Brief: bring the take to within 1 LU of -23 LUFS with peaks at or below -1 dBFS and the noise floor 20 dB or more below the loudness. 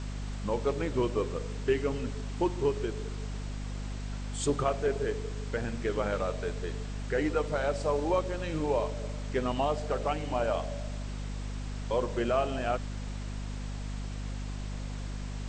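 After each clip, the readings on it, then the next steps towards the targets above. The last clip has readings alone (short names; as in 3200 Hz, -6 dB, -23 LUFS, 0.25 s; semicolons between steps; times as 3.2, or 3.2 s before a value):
hum 50 Hz; harmonics up to 250 Hz; hum level -34 dBFS; noise floor -37 dBFS; noise floor target -53 dBFS; loudness -32.5 LUFS; peak -15.5 dBFS; loudness target -23.0 LUFS
-> de-hum 50 Hz, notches 5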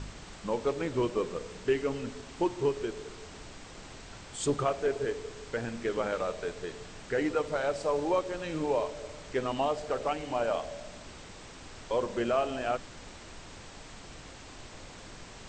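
hum none; noise floor -48 dBFS; noise floor target -53 dBFS
-> noise print and reduce 6 dB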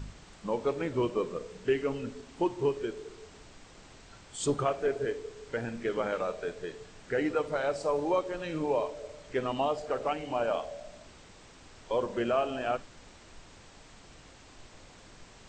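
noise floor -54 dBFS; loudness -32.5 LUFS; peak -16.0 dBFS; loudness target -23.0 LUFS
-> gain +9.5 dB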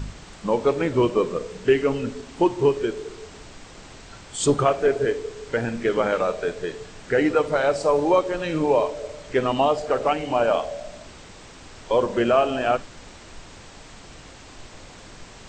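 loudness -23.0 LUFS; peak -6.5 dBFS; noise floor -44 dBFS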